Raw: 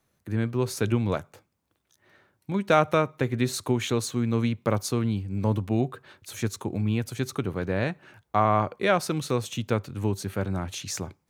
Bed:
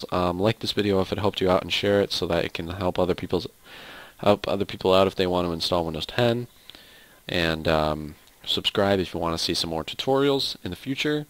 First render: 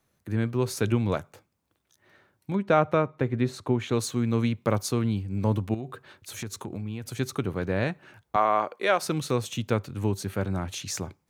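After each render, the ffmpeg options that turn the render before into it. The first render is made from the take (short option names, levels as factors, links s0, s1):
-filter_complex "[0:a]asplit=3[s0][s1][s2];[s0]afade=t=out:st=2.54:d=0.02[s3];[s1]lowpass=f=1600:p=1,afade=t=in:st=2.54:d=0.02,afade=t=out:st=3.91:d=0.02[s4];[s2]afade=t=in:st=3.91:d=0.02[s5];[s3][s4][s5]amix=inputs=3:normalize=0,asettb=1/sr,asplit=3[s6][s7][s8];[s6]atrim=end=5.744[s9];[s7]atrim=start=5.74:end=7.19,asetpts=PTS-STARTPTS,afade=t=in:d=0.004:c=qsin,afade=t=out:st=1.446:d=0.004:c=qsin,acompressor=threshold=0.0316:ratio=6:attack=3.2:release=140:knee=1:detection=peak[s10];[s8]atrim=start=7.186[s11];[s9][s10]acrossfade=d=0.004:c1=hsin:c2=qsin[s12];[s12][s11]acrossfade=d=0.004:c1=qsin:c2=hsin,asettb=1/sr,asplit=3[s13][s14][s15];[s13]atrim=end=8.364[s16];[s14]atrim=start=8.36:end=9.02,asetpts=PTS-STARTPTS,afade=t=in:d=0.004:c=qsin,afade=t=out:st=0.656:d=0.004:c=qsin,highpass=380[s17];[s15]atrim=start=9.016[s18];[s16][s17]acrossfade=d=0.004:c1=hsin:c2=qsin[s19];[s19][s18]acrossfade=d=0.004:c1=qsin:c2=hsin"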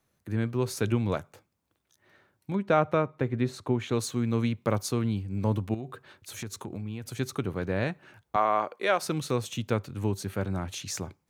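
-af "volume=0.794"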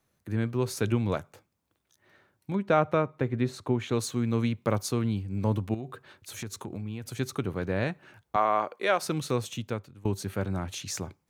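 -filter_complex "[0:a]asplit=2[s0][s1];[s0]atrim=end=10.05,asetpts=PTS-STARTPTS,afade=t=out:st=9.43:d=0.62:silence=0.0794328[s2];[s1]atrim=start=10.05,asetpts=PTS-STARTPTS,afade=t=in:d=0.004:c=hsin:silence=0.0794328[s3];[s2][s3]concat=n=2:v=0:a=1"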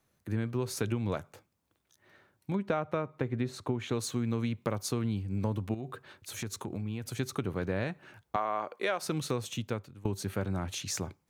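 -af "acompressor=threshold=0.0447:ratio=6"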